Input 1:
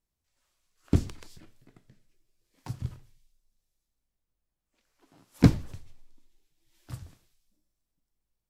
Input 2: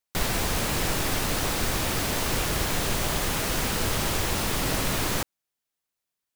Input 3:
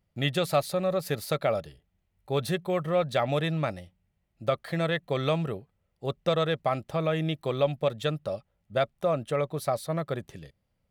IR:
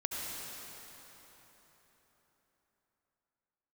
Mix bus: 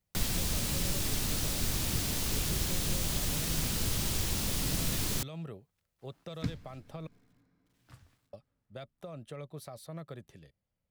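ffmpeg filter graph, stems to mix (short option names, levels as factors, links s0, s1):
-filter_complex "[0:a]equalizer=f=1800:w=0.44:g=10,acrusher=bits=9:mix=0:aa=0.000001,adelay=1000,volume=0.15,asplit=2[s0][s1];[s1]volume=0.0708[s2];[1:a]volume=0.668[s3];[2:a]alimiter=limit=0.1:level=0:latency=1:release=60,volume=0.316,asplit=3[s4][s5][s6];[s4]atrim=end=7.07,asetpts=PTS-STARTPTS,afade=t=out:st=7.066:d=0.004:c=hsin[s7];[s5]atrim=start=7.07:end=8.33,asetpts=PTS-STARTPTS,volume=0[s8];[s6]atrim=start=8.33,asetpts=PTS-STARTPTS,afade=t=in:d=0.004:c=hsin[s9];[s7][s8][s9]concat=n=3:v=0:a=1[s10];[3:a]atrim=start_sample=2205[s11];[s2][s11]afir=irnorm=-1:irlink=0[s12];[s0][s3][s10][s12]amix=inputs=4:normalize=0,acrossover=split=280|3000[s13][s14][s15];[s14]acompressor=threshold=0.00631:ratio=6[s16];[s13][s16][s15]amix=inputs=3:normalize=0"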